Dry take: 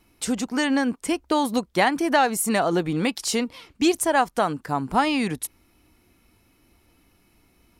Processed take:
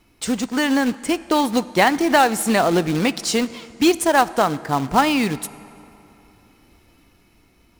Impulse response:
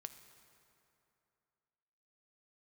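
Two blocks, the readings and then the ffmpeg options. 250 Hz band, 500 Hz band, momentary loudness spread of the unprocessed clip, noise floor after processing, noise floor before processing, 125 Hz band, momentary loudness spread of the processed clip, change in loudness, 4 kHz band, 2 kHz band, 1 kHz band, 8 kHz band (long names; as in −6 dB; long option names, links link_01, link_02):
+4.0 dB, +4.0 dB, 8 LU, −57 dBFS, −63 dBFS, +4.5 dB, 8 LU, +4.0 dB, +4.5 dB, +4.5 dB, +4.5 dB, +2.0 dB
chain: -filter_complex "[0:a]acrusher=bits=3:mode=log:mix=0:aa=0.000001,asplit=2[link_01][link_02];[1:a]atrim=start_sample=2205,lowpass=9000[link_03];[link_02][link_03]afir=irnorm=-1:irlink=0,volume=2.5dB[link_04];[link_01][link_04]amix=inputs=2:normalize=0,dynaudnorm=framelen=250:gausssize=11:maxgain=11.5dB,volume=-1.5dB"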